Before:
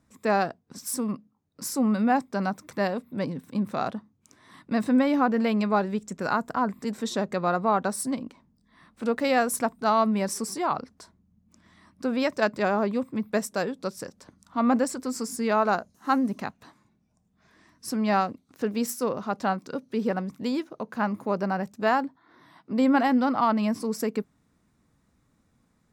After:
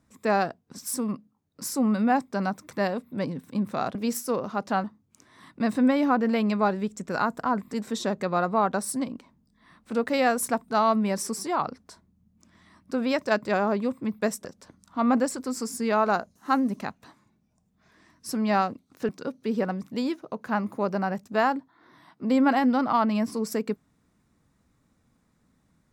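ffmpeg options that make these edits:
-filter_complex "[0:a]asplit=5[a][b][c][d][e];[a]atrim=end=3.952[f];[b]atrim=start=18.678:end=19.572[g];[c]atrim=start=3.948:end=13.562[h];[d]atrim=start=14.038:end=18.682[i];[e]atrim=start=19.568[j];[f][g]acrossfade=d=0.004:c1=hsin:c2=hsin[k];[k][h]acrossfade=d=0.004:c1=hsin:c2=hsin[l];[l][i]acrossfade=d=0.004:c1=hsin:c2=hsin[m];[m][j]acrossfade=d=0.004:c1=hsin:c2=hsin"

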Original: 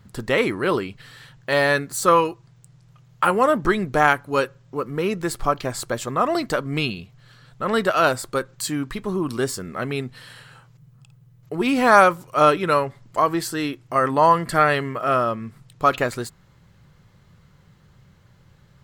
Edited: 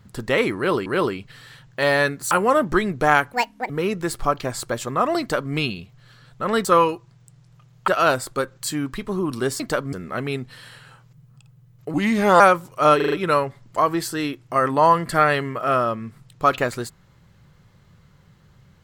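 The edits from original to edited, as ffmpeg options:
-filter_complex "[0:a]asplit=15[a][b][c][d][e][f][g][h][i][j][k][l][m][n][o];[a]atrim=end=0.862[p];[b]atrim=start=0.558:end=2.012[q];[c]atrim=start=3.238:end=4.264[r];[d]atrim=start=4.26:end=4.9,asetpts=PTS-STARTPTS,asetrate=76734,aresample=44100[s];[e]atrim=start=4.896:end=7.852[t];[f]atrim=start=2.008:end=3.242[u];[g]atrim=start=7.848:end=9.572[v];[h]atrim=start=6.398:end=6.732[w];[i]atrim=start=9.568:end=11.584[x];[j]atrim=start=11.58:end=11.96,asetpts=PTS-STARTPTS,asetrate=36162,aresample=44100[y];[k]atrim=start=11.956:end=12.562[z];[l]atrim=start=12.518:end=12.562[aa];[m]atrim=start=12.518:end=12.562[ab];[n]atrim=start=12.518:end=12.562[ac];[o]atrim=start=12.518[ad];[p][q]acrossfade=d=0.004:c1=hsin:c2=hsin[ae];[ae][r]acrossfade=d=0.004:c1=hsin:c2=hsin[af];[af][s]acrossfade=d=0.004:c1=hsin:c2=hsin[ag];[ag][t]acrossfade=d=0.004:c1=hsin:c2=hsin[ah];[ah][u]acrossfade=d=0.004:c1=hsin:c2=hsin[ai];[ai][v]acrossfade=d=0.004:c1=hsin:c2=hsin[aj];[aj][w]acrossfade=d=0.004:c1=hsin:c2=hsin[ak];[ak][x]acrossfade=d=0.004:c1=hsin:c2=hsin[al];[al][y]acrossfade=d=0.004:c1=hsin:c2=hsin[am];[am][z]acrossfade=d=0.004:c1=hsin:c2=hsin[an];[an][aa]acrossfade=d=0.004:c1=hsin:c2=hsin[ao];[ao][ab]acrossfade=d=0.004:c1=hsin:c2=hsin[ap];[ap][ac]acrossfade=d=0.004:c1=hsin:c2=hsin[aq];[aq][ad]acrossfade=d=0.004:c1=hsin:c2=hsin"

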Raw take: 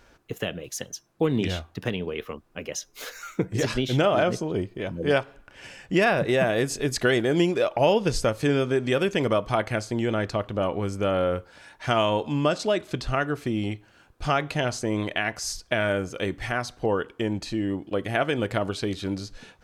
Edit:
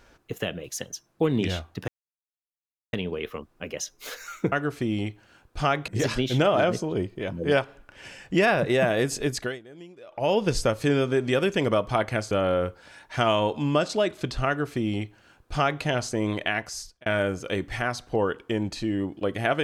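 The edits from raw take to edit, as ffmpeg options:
-filter_complex "[0:a]asplit=8[a][b][c][d][e][f][g][h];[a]atrim=end=1.88,asetpts=PTS-STARTPTS,afade=t=out:st=1.876:d=0.004:c=hsin,apad=pad_dur=1.05[i];[b]atrim=start=1.88:end=3.472,asetpts=PTS-STARTPTS,afade=t=in:d=0.004:c=hsin[j];[c]atrim=start=13.168:end=14.532[k];[d]atrim=start=3.468:end=7.18,asetpts=PTS-STARTPTS,afade=t=out:st=3.372:d=0.34:silence=0.0668344[l];[e]atrim=start=7.18:end=7.66,asetpts=PTS-STARTPTS,volume=-23.5dB[m];[f]atrim=start=7.66:end=9.902,asetpts=PTS-STARTPTS,afade=t=in:d=0.34:silence=0.0668344[n];[g]atrim=start=11.008:end=15.76,asetpts=PTS-STARTPTS,afade=t=out:st=4.232:d=0.52[o];[h]atrim=start=15.76,asetpts=PTS-STARTPTS,afade=t=in:d=0.004:c=hsin[p];[i][j]concat=n=2:v=0:a=1[q];[q][k]acrossfade=d=0.004:c1=hsin:c2=hsin[r];[l][m][n]concat=n=3:v=0:a=1[s];[r][s]acrossfade=d=0.004:c1=hsin:c2=hsin[t];[o][p]concat=n=2:v=0:a=1[u];[t][u]acrossfade=d=0.004:c1=hsin:c2=hsin"

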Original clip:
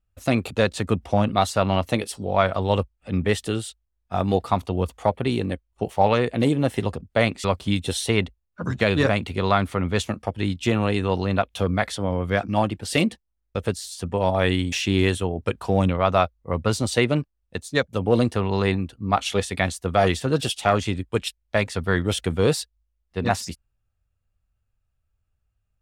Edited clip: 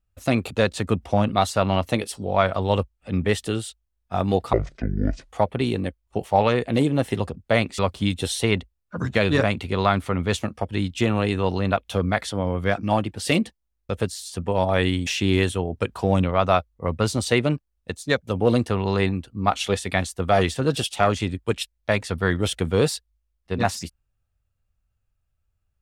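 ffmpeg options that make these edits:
-filter_complex "[0:a]asplit=3[a][b][c];[a]atrim=end=4.534[d];[b]atrim=start=4.53:end=4.95,asetpts=PTS-STARTPTS,asetrate=24255,aresample=44100,atrim=end_sample=33676,asetpts=PTS-STARTPTS[e];[c]atrim=start=4.946[f];[d][e]acrossfade=d=0.004:c1=hsin:c2=hsin[g];[g][f]acrossfade=d=0.004:c1=hsin:c2=hsin"

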